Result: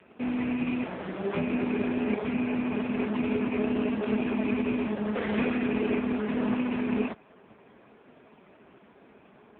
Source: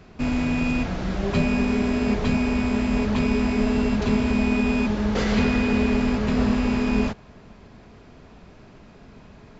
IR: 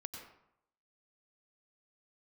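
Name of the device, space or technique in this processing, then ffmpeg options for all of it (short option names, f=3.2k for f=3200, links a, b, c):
telephone: -af "highpass=270,lowpass=3.4k" -ar 8000 -c:a libopencore_amrnb -b:a 4750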